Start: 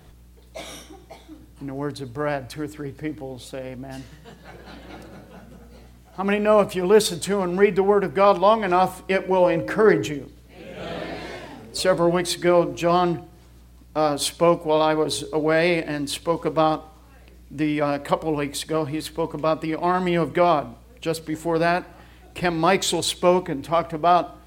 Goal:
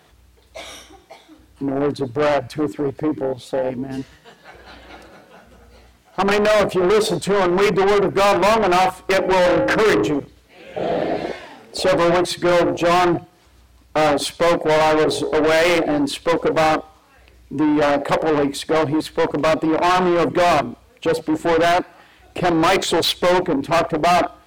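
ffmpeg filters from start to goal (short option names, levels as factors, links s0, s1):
-filter_complex "[0:a]afwtdn=0.0562,asplit=2[s0][s1];[s1]highpass=f=720:p=1,volume=39.8,asoftclip=type=tanh:threshold=0.668[s2];[s0][s2]amix=inputs=2:normalize=0,lowpass=f=5500:p=1,volume=0.501,volume=0.562"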